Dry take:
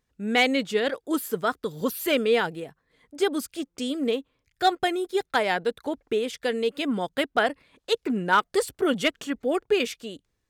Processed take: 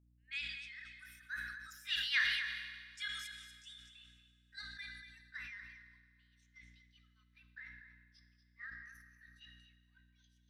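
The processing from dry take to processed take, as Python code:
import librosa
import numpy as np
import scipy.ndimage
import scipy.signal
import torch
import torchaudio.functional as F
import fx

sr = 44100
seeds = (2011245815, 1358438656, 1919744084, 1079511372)

y = fx.pitch_glide(x, sr, semitones=7.5, runs='starting unshifted')
y = fx.doppler_pass(y, sr, speed_mps=34, closest_m=7.7, pass_at_s=2.44)
y = scipy.signal.sosfilt(scipy.signal.butter(8, 1600.0, 'highpass', fs=sr, output='sos'), y)
y = fx.noise_reduce_blind(y, sr, reduce_db=15)
y = scipy.signal.sosfilt(scipy.signal.butter(2, 7700.0, 'lowpass', fs=sr, output='sos'), y)
y = fx.high_shelf(y, sr, hz=3100.0, db=-11.5)
y = fx.add_hum(y, sr, base_hz=60, snr_db=21)
y = y + 10.0 ** (-11.0 / 20.0) * np.pad(y, (int(238 * sr / 1000.0), 0))[:len(y)]
y = fx.rev_fdn(y, sr, rt60_s=2.8, lf_ratio=1.0, hf_ratio=0.9, size_ms=28.0, drr_db=9.5)
y = fx.sustainer(y, sr, db_per_s=37.0)
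y = y * librosa.db_to_amplitude(6.0)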